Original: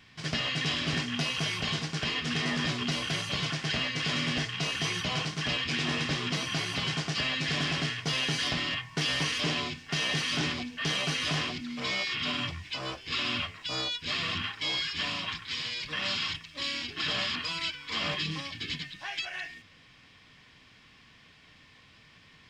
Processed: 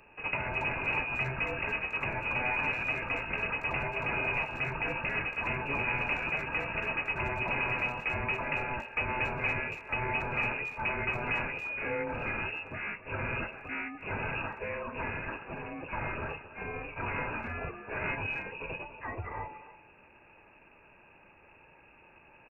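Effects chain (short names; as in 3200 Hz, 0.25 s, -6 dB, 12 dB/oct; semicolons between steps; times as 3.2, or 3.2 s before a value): inverted band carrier 2700 Hz; speakerphone echo 0.28 s, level -14 dB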